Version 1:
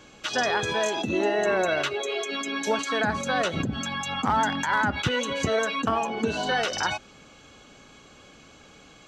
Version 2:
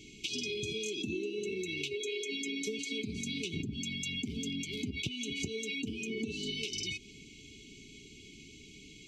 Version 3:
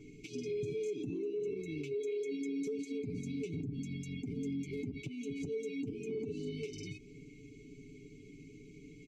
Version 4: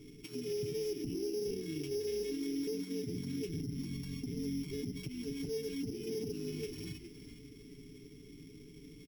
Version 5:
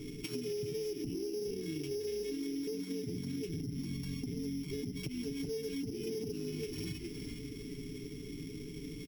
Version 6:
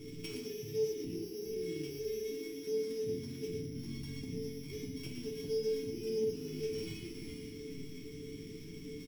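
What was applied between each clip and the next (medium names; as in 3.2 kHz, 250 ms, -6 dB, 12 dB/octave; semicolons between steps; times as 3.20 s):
FFT band-reject 450–2100 Hz; compression, threshold -34 dBFS, peak gain reduction 13 dB
resonant high shelf 2.2 kHz -13.5 dB, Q 3; comb 7 ms, depth 76%; peak limiter -31 dBFS, peak gain reduction 8 dB
sorted samples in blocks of 8 samples; frequency-shifting echo 413 ms, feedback 31%, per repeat -93 Hz, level -12 dB
compression 6:1, threshold -45 dBFS, peak gain reduction 11 dB; trim +9 dB
chord resonator D2 minor, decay 0.33 s; loudspeakers at several distances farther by 18 m -9 dB, 40 m -6 dB; trim +8.5 dB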